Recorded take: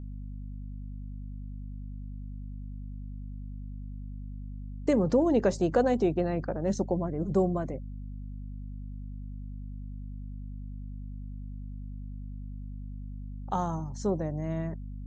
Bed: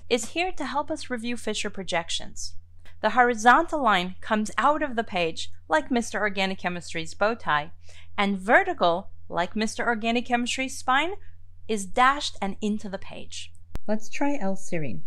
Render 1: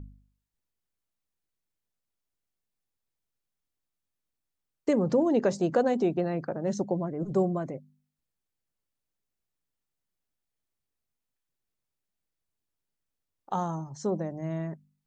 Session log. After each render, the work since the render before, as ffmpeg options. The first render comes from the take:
-af "bandreject=f=50:t=h:w=4,bandreject=f=100:t=h:w=4,bandreject=f=150:t=h:w=4,bandreject=f=200:t=h:w=4,bandreject=f=250:t=h:w=4"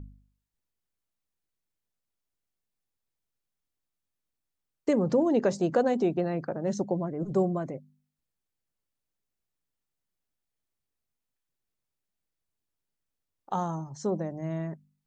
-af anull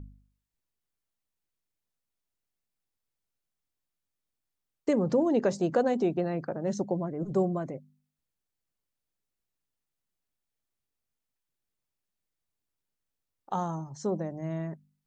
-af "volume=-1dB"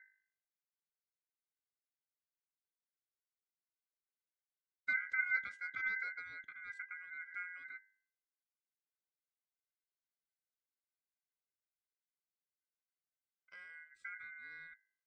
-filter_complex "[0:a]asplit=3[a][b][c];[a]bandpass=f=270:t=q:w=8,volume=0dB[d];[b]bandpass=f=2.29k:t=q:w=8,volume=-6dB[e];[c]bandpass=f=3.01k:t=q:w=8,volume=-9dB[f];[d][e][f]amix=inputs=3:normalize=0,aeval=exprs='val(0)*sin(2*PI*1800*n/s)':c=same"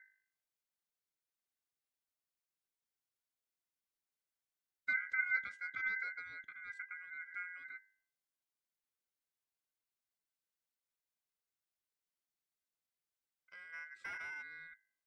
-filter_complex "[0:a]asplit=3[a][b][c];[a]afade=t=out:st=13.72:d=0.02[d];[b]asplit=2[e][f];[f]highpass=f=720:p=1,volume=21dB,asoftclip=type=tanh:threshold=-33.5dB[g];[e][g]amix=inputs=2:normalize=0,lowpass=f=1.4k:p=1,volume=-6dB,afade=t=in:st=13.72:d=0.02,afade=t=out:st=14.41:d=0.02[h];[c]afade=t=in:st=14.41:d=0.02[i];[d][h][i]amix=inputs=3:normalize=0"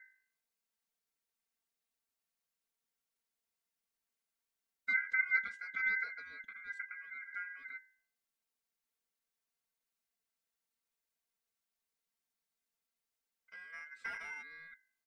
-af "bandreject=f=3.3k:w=28,aecho=1:1:4.4:0.84"

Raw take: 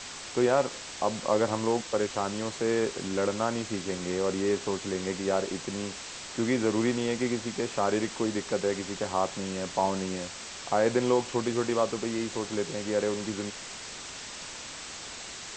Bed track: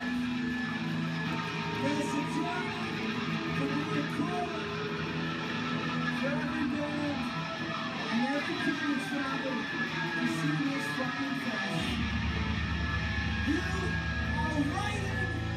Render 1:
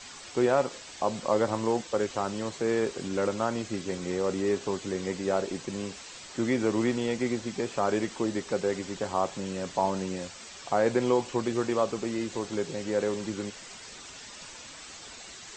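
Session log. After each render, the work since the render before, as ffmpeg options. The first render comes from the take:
-af "afftdn=nr=8:nf=-42"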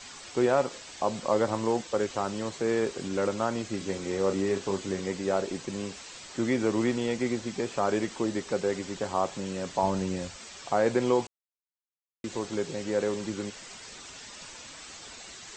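-filter_complex "[0:a]asettb=1/sr,asplit=3[a][b][c];[a]atrim=end=3.774[d];[b]atrim=start=3.77:end=5,asetpts=PTS-STARTPTS,afade=t=in:d=0.004:c=qsin,afade=t=out:st=1.226:d=0.004:c=qsin,asplit=2[e][f];[f]adelay=31,volume=-8dB[g];[e][g]amix=inputs=2:normalize=0,atrim=end_sample=54243[h];[c]atrim=start=4.996[i];[d][h]acrossfade=d=0.004:c1=hsin:c2=qsin[j];[j][i]acrossfade=d=0.004:c1=qsin:c2=hsin,asettb=1/sr,asplit=3[k][l][m];[k]atrim=end=9.834[n];[l]atrim=start=9.83:end=10.36,asetpts=PTS-STARTPTS,afade=t=in:d=0.004:c=qsin,afade=t=out:st=0.526:d=0.004:c=qsin,lowshelf=f=110:g=12[o];[m]atrim=start=10.356[p];[n][o]acrossfade=d=0.004:c1=hsin:c2=qsin[q];[q][p]acrossfade=d=0.004:c1=qsin:c2=hsin,asplit=3[r][s][t];[r]atrim=end=11.27,asetpts=PTS-STARTPTS,afade=t=out:st=11.266:d=0.004:c=hsin[u];[s]atrim=start=11.27:end=12.24,asetpts=PTS-STARTPTS,volume=0[v];[t]atrim=start=12.24,asetpts=PTS-STARTPTS,afade=t=in:d=0.004:c=hsin[w];[u][v][w]concat=n=3:v=0:a=1"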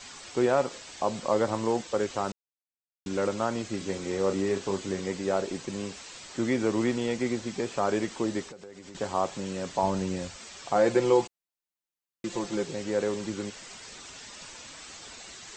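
-filter_complex "[0:a]asettb=1/sr,asplit=3[a][b][c];[a]atrim=end=8.434[d];[b]atrim=start=8.43:end=8.95,asetpts=PTS-STARTPTS,afade=t=in:d=0.004:c=qsin,afade=t=out:st=0.516:d=0.004:c=qsin,acompressor=threshold=-41dB:ratio=12:attack=3.2:release=140:knee=1:detection=peak[e];[c]atrim=start=8.946[f];[d][e]acrossfade=d=0.004:c1=hsin:c2=qsin[g];[g][f]acrossfade=d=0.004:c1=qsin:c2=hsin,asettb=1/sr,asplit=3[h][i][j];[h]atrim=end=10.754[k];[i]atrim=start=10.75:end=12.64,asetpts=PTS-STARTPTS,afade=t=in:d=0.004:c=qsin,afade=t=out:st=1.886:d=0.004:c=qsin,aecho=1:1:5.8:0.65,atrim=end_sample=83349[l];[j]atrim=start=12.636[m];[k][l]acrossfade=d=0.004:c1=hsin:c2=qsin[n];[n][m]acrossfade=d=0.004:c1=qsin:c2=hsin,asplit=3[o][p][q];[o]atrim=end=2.32,asetpts=PTS-STARTPTS,afade=t=out:st=2.316:d=0.004:c=hsin[r];[p]atrim=start=2.32:end=3.06,asetpts=PTS-STARTPTS,volume=0[s];[q]atrim=start=3.06,asetpts=PTS-STARTPTS,afade=t=in:d=0.004:c=hsin[t];[r][s][t]concat=n=3:v=0:a=1"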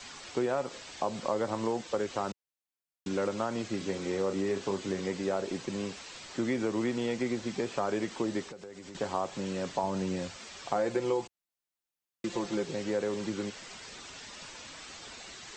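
-filter_complex "[0:a]acrossover=split=95|6100[a][b][c];[a]acompressor=threshold=-60dB:ratio=4[d];[b]acompressor=threshold=-27dB:ratio=4[e];[c]acompressor=threshold=-59dB:ratio=4[f];[d][e][f]amix=inputs=3:normalize=0"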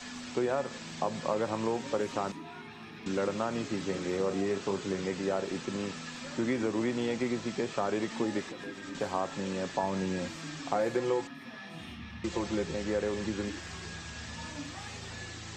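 -filter_complex "[1:a]volume=-12.5dB[a];[0:a][a]amix=inputs=2:normalize=0"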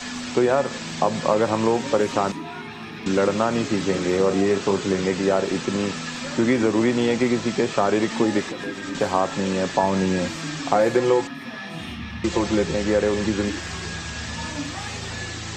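-af "volume=11dB"

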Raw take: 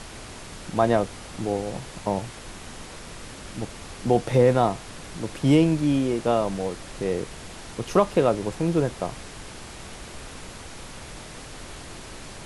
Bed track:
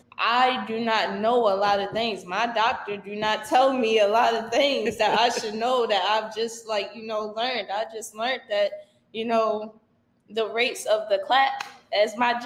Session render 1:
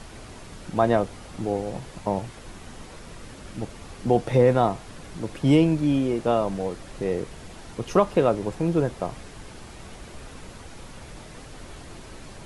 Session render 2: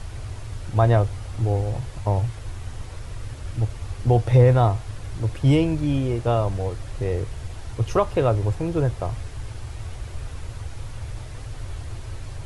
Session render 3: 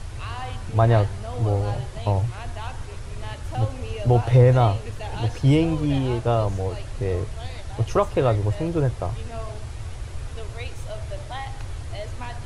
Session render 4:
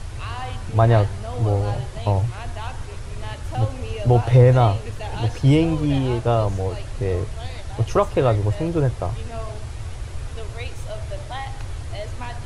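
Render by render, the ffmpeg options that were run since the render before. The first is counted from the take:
-af "afftdn=nr=6:nf=-41"
-af "lowshelf=f=140:t=q:w=3:g=9.5"
-filter_complex "[1:a]volume=-15dB[a];[0:a][a]amix=inputs=2:normalize=0"
-af "volume=2dB"

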